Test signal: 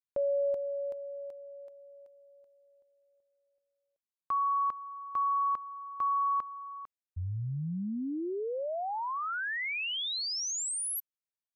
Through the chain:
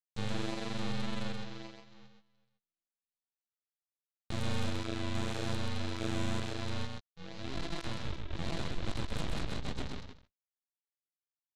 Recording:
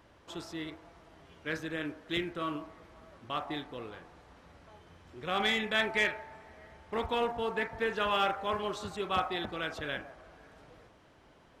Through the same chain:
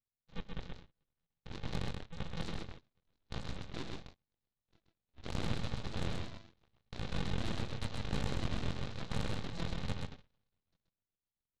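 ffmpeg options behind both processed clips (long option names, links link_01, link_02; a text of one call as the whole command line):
ffmpeg -i in.wav -af "highpass=frequency=590:poles=1,afftdn=noise_reduction=14:noise_floor=-43,lowpass=frequency=2000:width=0.5412,lowpass=frequency=2000:width=1.3066,acompressor=threshold=-44dB:ratio=6:attack=1.1:release=24:knee=1:detection=peak,aresample=8000,acrusher=samples=24:mix=1:aa=0.000001,aresample=44100,crystalizer=i=3:c=0,flanger=delay=17.5:depth=5.9:speed=0.88,aeval=exprs='0.0178*(cos(1*acos(clip(val(0)/0.0178,-1,1)))-cos(1*PI/2))+0.00708*(cos(6*acos(clip(val(0)/0.0178,-1,1)))-cos(6*PI/2))+0.00251*(cos(7*acos(clip(val(0)/0.0178,-1,1)))-cos(7*PI/2))':channel_layout=same,aecho=1:1:130:0.631,volume=7dB" out.wav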